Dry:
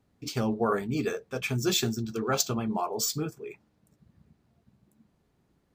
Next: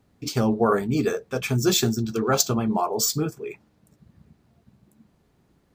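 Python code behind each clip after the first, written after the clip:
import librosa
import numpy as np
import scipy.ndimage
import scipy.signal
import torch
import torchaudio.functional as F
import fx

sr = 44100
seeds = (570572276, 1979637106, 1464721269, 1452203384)

y = fx.dynamic_eq(x, sr, hz=2600.0, q=1.2, threshold_db=-45.0, ratio=4.0, max_db=-5)
y = y * librosa.db_to_amplitude(6.5)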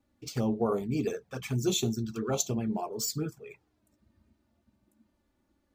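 y = fx.env_flanger(x, sr, rest_ms=3.5, full_db=-18.0)
y = y * librosa.db_to_amplitude(-6.5)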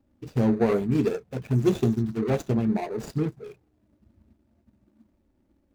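y = scipy.signal.medfilt(x, 41)
y = y * librosa.db_to_amplitude(7.5)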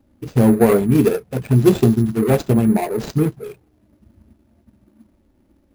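y = np.repeat(x[::4], 4)[:len(x)]
y = y * librosa.db_to_amplitude(9.0)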